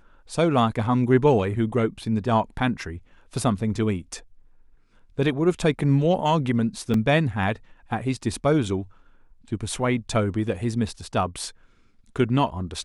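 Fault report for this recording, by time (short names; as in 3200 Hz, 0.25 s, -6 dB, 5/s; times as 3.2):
6.94 gap 2.6 ms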